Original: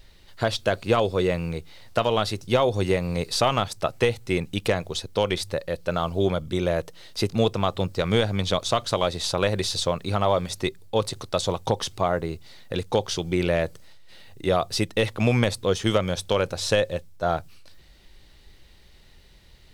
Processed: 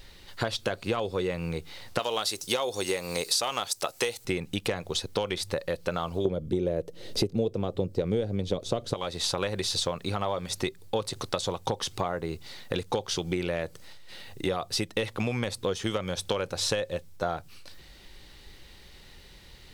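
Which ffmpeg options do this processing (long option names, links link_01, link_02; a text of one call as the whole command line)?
ffmpeg -i in.wav -filter_complex "[0:a]asettb=1/sr,asplit=3[link_01][link_02][link_03];[link_01]atrim=end=1.994[link_04];[link_02]atrim=start=1.99:end=4.25,asetpts=PTS-STARTPTS,afade=type=in:duration=0.004:curve=qsin,afade=type=out:start_time=2.256:duration=0.004:curve=qsin,bass=frequency=250:gain=-13,treble=frequency=4000:gain=12[link_05];[link_03]atrim=start=4.246[link_06];[link_04][link_05]acrossfade=duration=0.004:curve1=hsin:curve2=qsin[link_07];[link_07][link_06]acrossfade=duration=0.004:curve1=qsin:curve2=hsin,asettb=1/sr,asplit=3[link_08][link_09][link_10];[link_08]atrim=end=6.254[link_11];[link_09]atrim=start=6.25:end=8.94,asetpts=PTS-STARTPTS,afade=type=in:duration=0.004:curve=qsin,afade=type=out:start_time=2.686:duration=0.004:curve=qsin,lowshelf=frequency=700:width_type=q:width=1.5:gain=11.5[link_12];[link_10]atrim=start=8.936[link_13];[link_11][link_12]acrossfade=duration=0.004:curve1=hsin:curve2=qsin[link_14];[link_14][link_13]acrossfade=duration=0.004:curve1=qsin:curve2=hsin,acompressor=threshold=-30dB:ratio=6,lowshelf=frequency=150:gain=-5,bandreject=frequency=640:width=12,volume=5dB" out.wav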